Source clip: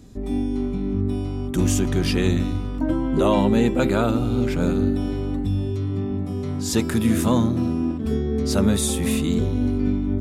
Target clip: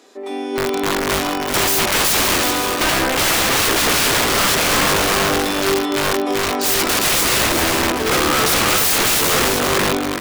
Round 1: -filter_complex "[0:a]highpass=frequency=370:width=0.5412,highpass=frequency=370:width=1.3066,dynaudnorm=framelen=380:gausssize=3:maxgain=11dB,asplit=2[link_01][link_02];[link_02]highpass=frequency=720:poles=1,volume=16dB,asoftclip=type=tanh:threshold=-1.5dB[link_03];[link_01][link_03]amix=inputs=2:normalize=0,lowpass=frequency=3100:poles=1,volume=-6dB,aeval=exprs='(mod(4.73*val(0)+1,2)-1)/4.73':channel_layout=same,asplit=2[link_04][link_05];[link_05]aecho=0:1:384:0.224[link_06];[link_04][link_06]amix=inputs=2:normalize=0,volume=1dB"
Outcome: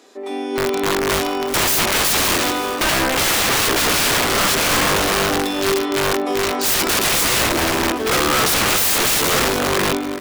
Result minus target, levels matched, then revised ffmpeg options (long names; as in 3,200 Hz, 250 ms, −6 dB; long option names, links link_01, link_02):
echo-to-direct −8 dB
-filter_complex "[0:a]highpass=frequency=370:width=0.5412,highpass=frequency=370:width=1.3066,dynaudnorm=framelen=380:gausssize=3:maxgain=11dB,asplit=2[link_01][link_02];[link_02]highpass=frequency=720:poles=1,volume=16dB,asoftclip=type=tanh:threshold=-1.5dB[link_03];[link_01][link_03]amix=inputs=2:normalize=0,lowpass=frequency=3100:poles=1,volume=-6dB,aeval=exprs='(mod(4.73*val(0)+1,2)-1)/4.73':channel_layout=same,asplit=2[link_04][link_05];[link_05]aecho=0:1:384:0.562[link_06];[link_04][link_06]amix=inputs=2:normalize=0,volume=1dB"